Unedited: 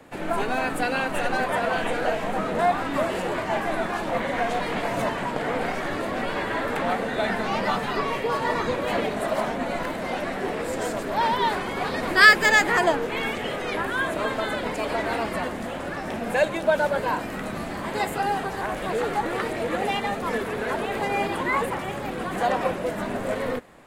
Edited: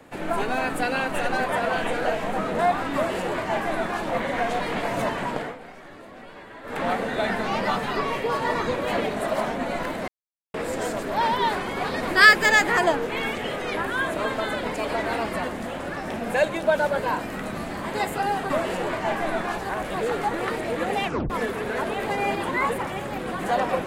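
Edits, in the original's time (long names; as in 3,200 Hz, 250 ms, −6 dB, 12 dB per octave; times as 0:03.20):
0:02.95–0:04.03: duplicate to 0:18.50
0:05.35–0:06.84: duck −15.5 dB, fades 0.21 s
0:10.08–0:10.54: silence
0:19.96: tape stop 0.26 s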